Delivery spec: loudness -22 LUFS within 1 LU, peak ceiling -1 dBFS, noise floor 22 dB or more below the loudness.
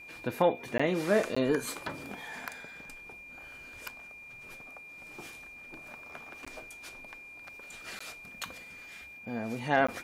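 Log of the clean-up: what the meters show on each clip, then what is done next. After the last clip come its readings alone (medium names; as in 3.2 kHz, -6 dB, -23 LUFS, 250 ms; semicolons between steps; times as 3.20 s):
dropouts 5; longest dropout 15 ms; steady tone 2.4 kHz; tone level -46 dBFS; loudness -34.0 LUFS; peak level -12.5 dBFS; loudness target -22.0 LUFS
-> interpolate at 0.78/1.35/6.45/7.99/9.87 s, 15 ms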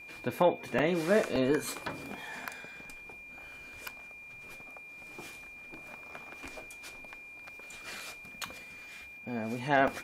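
dropouts 0; steady tone 2.4 kHz; tone level -46 dBFS
-> band-stop 2.4 kHz, Q 30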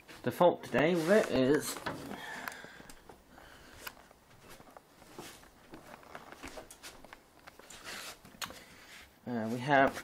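steady tone not found; loudness -32.0 LUFS; peak level -12.5 dBFS; loudness target -22.0 LUFS
-> trim +10 dB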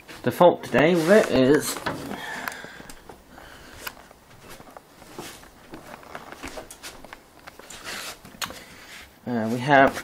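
loudness -22.0 LUFS; peak level -2.5 dBFS; noise floor -52 dBFS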